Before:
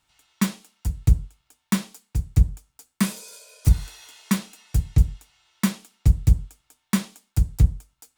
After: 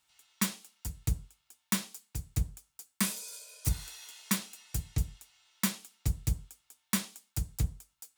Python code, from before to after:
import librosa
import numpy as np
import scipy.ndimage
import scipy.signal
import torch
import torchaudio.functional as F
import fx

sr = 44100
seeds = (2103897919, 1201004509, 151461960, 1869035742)

y = fx.tilt_eq(x, sr, slope=2.0)
y = y * 10.0 ** (-6.5 / 20.0)